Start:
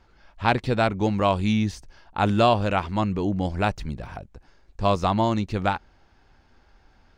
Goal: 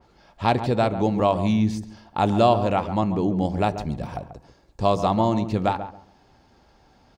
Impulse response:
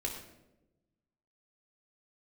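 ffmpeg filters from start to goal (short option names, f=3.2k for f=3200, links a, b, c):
-filter_complex "[0:a]highpass=f=160:p=1,equalizer=f=2k:t=o:w=1.9:g=-6.5,bandreject=f=1.5k:w=11,asplit=2[a][b];[b]acompressor=threshold=-31dB:ratio=6,volume=0dB[c];[a][c]amix=inputs=2:normalize=0,asplit=2[d][e];[e]adelay=138,lowpass=f=1.2k:p=1,volume=-9.5dB,asplit=2[f][g];[g]adelay=138,lowpass=f=1.2k:p=1,volume=0.22,asplit=2[h][i];[i]adelay=138,lowpass=f=1.2k:p=1,volume=0.22[j];[d][f][h][j]amix=inputs=4:normalize=0,asplit=2[k][l];[1:a]atrim=start_sample=2205,asetrate=83790,aresample=44100[m];[l][m]afir=irnorm=-1:irlink=0,volume=-11dB[n];[k][n]amix=inputs=2:normalize=0,adynamicequalizer=threshold=0.01:dfrequency=2900:dqfactor=0.7:tfrequency=2900:tqfactor=0.7:attack=5:release=100:ratio=0.375:range=3:mode=cutabove:tftype=highshelf"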